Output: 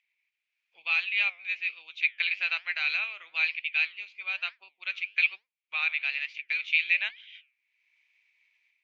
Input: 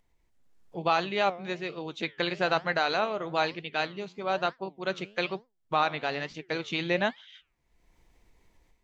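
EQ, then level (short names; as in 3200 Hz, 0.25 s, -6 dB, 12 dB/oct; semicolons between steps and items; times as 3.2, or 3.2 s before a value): resonant high-pass 2400 Hz, resonance Q 8.7; air absorption 190 m; high shelf 4200 Hz +6.5 dB; -4.0 dB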